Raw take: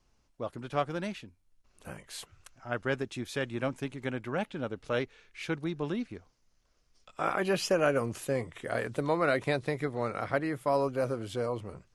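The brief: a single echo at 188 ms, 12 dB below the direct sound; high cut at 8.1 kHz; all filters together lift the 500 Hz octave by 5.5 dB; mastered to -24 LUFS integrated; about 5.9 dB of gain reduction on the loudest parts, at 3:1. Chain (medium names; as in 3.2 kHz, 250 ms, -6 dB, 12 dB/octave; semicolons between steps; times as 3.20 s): low-pass 8.1 kHz; peaking EQ 500 Hz +6.5 dB; compression 3:1, threshold -26 dBFS; delay 188 ms -12 dB; trim +8 dB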